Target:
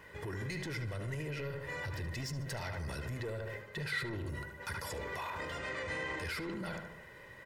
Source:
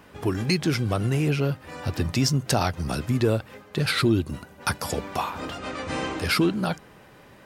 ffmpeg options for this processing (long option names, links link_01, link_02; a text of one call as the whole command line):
ffmpeg -i in.wav -filter_complex "[0:a]asoftclip=type=tanh:threshold=-20dB,aecho=1:1:2:0.55,asplit=2[link_01][link_02];[link_02]adelay=74,lowpass=frequency=2400:poles=1,volume=-8dB,asplit=2[link_03][link_04];[link_04]adelay=74,lowpass=frequency=2400:poles=1,volume=0.51,asplit=2[link_05][link_06];[link_06]adelay=74,lowpass=frequency=2400:poles=1,volume=0.51,asplit=2[link_07][link_08];[link_08]adelay=74,lowpass=frequency=2400:poles=1,volume=0.51,asplit=2[link_09][link_10];[link_10]adelay=74,lowpass=frequency=2400:poles=1,volume=0.51,asplit=2[link_11][link_12];[link_12]adelay=74,lowpass=frequency=2400:poles=1,volume=0.51[link_13];[link_01][link_03][link_05][link_07][link_09][link_11][link_13]amix=inputs=7:normalize=0,alimiter=level_in=2.5dB:limit=-24dB:level=0:latency=1:release=24,volume=-2.5dB,equalizer=frequency=1900:width_type=o:width=0.23:gain=14.5,volume=-7dB" out.wav